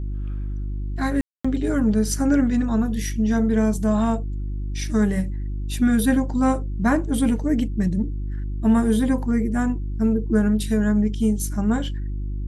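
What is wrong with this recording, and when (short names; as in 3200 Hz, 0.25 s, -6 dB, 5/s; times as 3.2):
hum 50 Hz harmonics 7 -27 dBFS
1.21–1.45 gap 0.235 s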